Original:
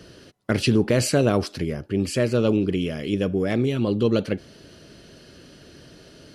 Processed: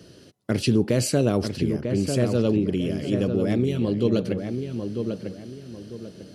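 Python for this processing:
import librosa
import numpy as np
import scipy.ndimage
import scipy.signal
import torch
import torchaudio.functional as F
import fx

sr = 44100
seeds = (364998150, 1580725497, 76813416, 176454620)

y = scipy.signal.sosfilt(scipy.signal.butter(2, 77.0, 'highpass', fs=sr, output='sos'), x)
y = fx.peak_eq(y, sr, hz=1500.0, db=-7.0, octaves=2.5)
y = fx.echo_filtered(y, sr, ms=946, feedback_pct=33, hz=2300.0, wet_db=-6.0)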